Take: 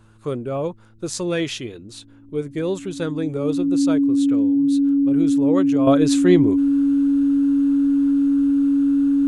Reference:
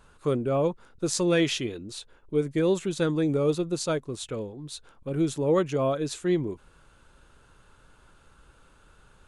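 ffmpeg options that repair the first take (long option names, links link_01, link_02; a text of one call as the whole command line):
ffmpeg -i in.wav -af "bandreject=frequency=110:width_type=h:width=4,bandreject=frequency=220:width_type=h:width=4,bandreject=frequency=330:width_type=h:width=4,bandreject=frequency=280:width=30,asetnsamples=nb_out_samples=441:pad=0,asendcmd='5.87 volume volume -9.5dB',volume=0dB" out.wav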